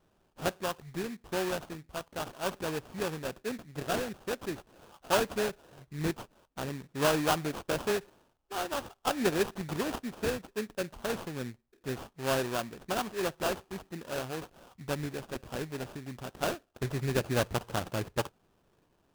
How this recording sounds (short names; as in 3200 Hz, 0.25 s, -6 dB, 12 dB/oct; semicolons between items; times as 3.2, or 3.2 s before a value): aliases and images of a low sample rate 2100 Hz, jitter 20%